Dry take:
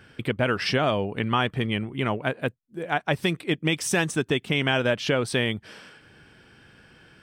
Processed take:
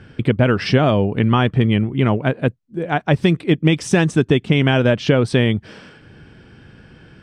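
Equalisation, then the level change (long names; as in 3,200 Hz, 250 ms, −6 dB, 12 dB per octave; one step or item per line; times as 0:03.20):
low-pass filter 7,100 Hz 12 dB per octave
low-shelf EQ 460 Hz +11 dB
+2.5 dB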